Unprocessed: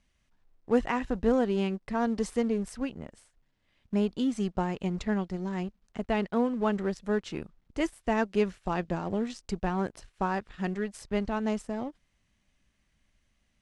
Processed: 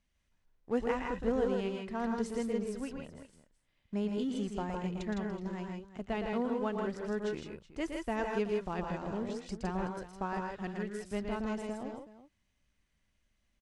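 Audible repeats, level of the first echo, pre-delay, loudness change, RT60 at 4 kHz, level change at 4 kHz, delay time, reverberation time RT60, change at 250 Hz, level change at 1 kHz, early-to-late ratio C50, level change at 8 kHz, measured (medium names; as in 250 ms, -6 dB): 3, -6.0 dB, no reverb, -5.5 dB, no reverb, -5.0 dB, 116 ms, no reverb, -6.0 dB, -5.0 dB, no reverb, -5.0 dB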